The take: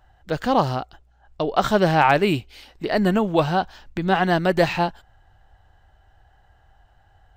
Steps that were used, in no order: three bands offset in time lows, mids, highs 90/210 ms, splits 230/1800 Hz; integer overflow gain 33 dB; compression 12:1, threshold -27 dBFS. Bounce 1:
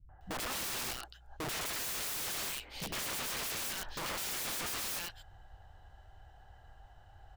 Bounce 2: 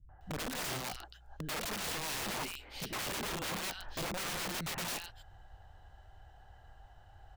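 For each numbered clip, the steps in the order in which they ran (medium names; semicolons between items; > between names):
three bands offset in time > integer overflow > compression; compression > three bands offset in time > integer overflow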